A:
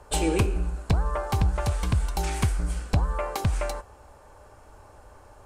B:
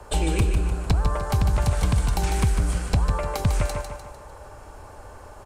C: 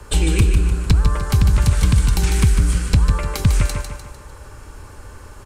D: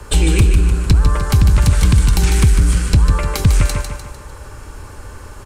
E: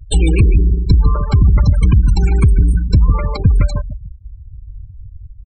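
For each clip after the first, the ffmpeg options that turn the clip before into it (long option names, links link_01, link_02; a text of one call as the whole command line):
ffmpeg -i in.wav -filter_complex "[0:a]acrossover=split=190|1000|3800[link_01][link_02][link_03][link_04];[link_01]acompressor=threshold=-25dB:ratio=4[link_05];[link_02]acompressor=threshold=-38dB:ratio=4[link_06];[link_03]acompressor=threshold=-43dB:ratio=4[link_07];[link_04]acompressor=threshold=-43dB:ratio=4[link_08];[link_05][link_06][link_07][link_08]amix=inputs=4:normalize=0,asplit=2[link_09][link_10];[link_10]aecho=0:1:150|300|450|600|750:0.473|0.213|0.0958|0.0431|0.0194[link_11];[link_09][link_11]amix=inputs=2:normalize=0,volume=6.5dB" out.wav
ffmpeg -i in.wav -af "equalizer=frequency=700:width=1.4:gain=-14,volume=7dB" out.wav
ffmpeg -i in.wav -af "acontrast=38,volume=-1dB" out.wav
ffmpeg -i in.wav -af "aeval=exprs='val(0)+0.0141*(sin(2*PI*50*n/s)+sin(2*PI*2*50*n/s)/2+sin(2*PI*3*50*n/s)/3+sin(2*PI*4*50*n/s)/4+sin(2*PI*5*50*n/s)/5)':channel_layout=same,afftfilt=real='re*gte(hypot(re,im),0.158)':imag='im*gte(hypot(re,im),0.158)':win_size=1024:overlap=0.75,volume=1dB" out.wav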